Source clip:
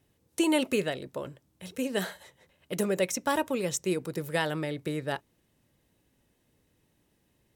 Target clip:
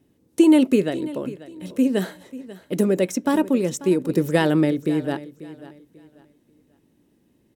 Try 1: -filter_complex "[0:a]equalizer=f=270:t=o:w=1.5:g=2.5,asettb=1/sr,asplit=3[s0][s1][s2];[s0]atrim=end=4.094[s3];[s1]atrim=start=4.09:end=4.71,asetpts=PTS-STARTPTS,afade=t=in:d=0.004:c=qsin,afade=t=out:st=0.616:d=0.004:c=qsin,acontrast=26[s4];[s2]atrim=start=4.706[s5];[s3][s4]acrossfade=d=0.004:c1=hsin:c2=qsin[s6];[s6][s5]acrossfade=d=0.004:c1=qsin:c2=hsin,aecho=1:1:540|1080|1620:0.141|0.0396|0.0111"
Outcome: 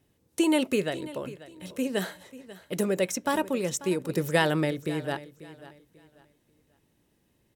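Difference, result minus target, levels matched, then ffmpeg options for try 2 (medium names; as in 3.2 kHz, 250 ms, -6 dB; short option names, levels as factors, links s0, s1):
250 Hz band -2.5 dB
-filter_complex "[0:a]equalizer=f=270:t=o:w=1.5:g=14,asettb=1/sr,asplit=3[s0][s1][s2];[s0]atrim=end=4.094[s3];[s1]atrim=start=4.09:end=4.71,asetpts=PTS-STARTPTS,afade=t=in:d=0.004:c=qsin,afade=t=out:st=0.616:d=0.004:c=qsin,acontrast=26[s4];[s2]atrim=start=4.706[s5];[s3][s4]acrossfade=d=0.004:c1=hsin:c2=qsin[s6];[s6][s5]acrossfade=d=0.004:c1=qsin:c2=hsin,aecho=1:1:540|1080|1620:0.141|0.0396|0.0111"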